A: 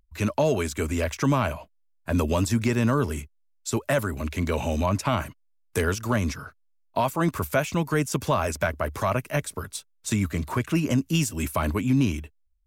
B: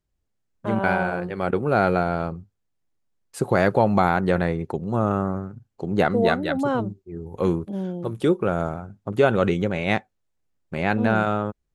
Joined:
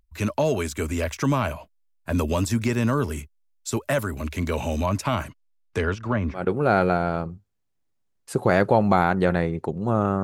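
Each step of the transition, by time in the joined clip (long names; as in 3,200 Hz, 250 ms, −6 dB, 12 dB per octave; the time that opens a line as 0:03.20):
A
0:05.22–0:06.48: low-pass filter 11,000 Hz → 1,200 Hz
0:06.39: continue with B from 0:01.45, crossfade 0.18 s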